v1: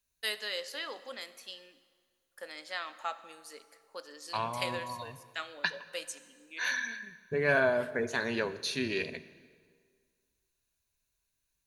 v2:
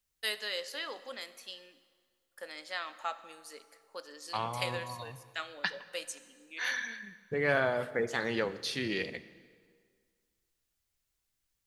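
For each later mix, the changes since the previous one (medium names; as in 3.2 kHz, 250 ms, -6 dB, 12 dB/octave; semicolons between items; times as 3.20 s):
second voice: remove rippled EQ curve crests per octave 1.5, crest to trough 9 dB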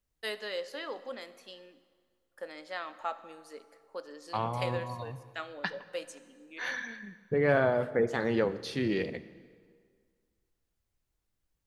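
first voice: add treble shelf 9 kHz -5 dB; master: add tilt shelf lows +6.5 dB, about 1.3 kHz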